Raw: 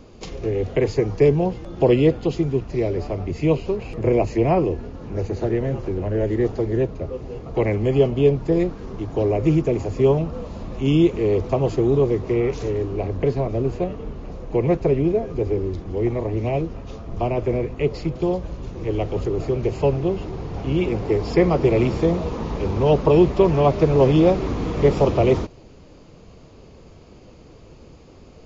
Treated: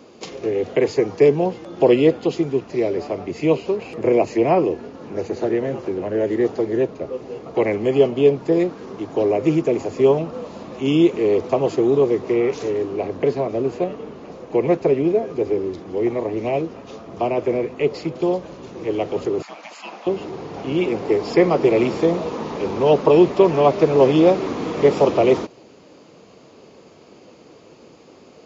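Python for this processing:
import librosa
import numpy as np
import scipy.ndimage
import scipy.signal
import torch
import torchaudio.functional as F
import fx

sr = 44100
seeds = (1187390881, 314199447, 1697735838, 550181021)

y = fx.spec_gate(x, sr, threshold_db=-20, keep='weak', at=(19.42, 20.07))
y = scipy.signal.sosfilt(scipy.signal.butter(2, 240.0, 'highpass', fs=sr, output='sos'), y)
y = F.gain(torch.from_numpy(y), 3.0).numpy()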